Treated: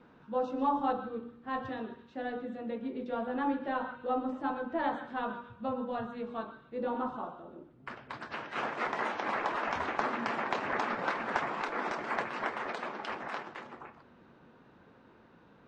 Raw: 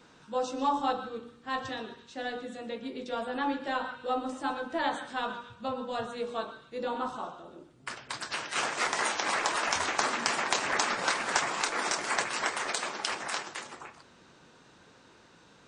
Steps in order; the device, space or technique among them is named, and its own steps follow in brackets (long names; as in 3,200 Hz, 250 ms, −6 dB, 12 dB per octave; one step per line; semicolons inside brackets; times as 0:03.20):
0:05.98–0:06.65: parametric band 520 Hz −6 dB 0.87 octaves
phone in a pocket (low-pass filter 3,000 Hz 12 dB per octave; parametric band 230 Hz +4.5 dB 0.3 octaves; high-shelf EQ 2,100 Hz −11 dB)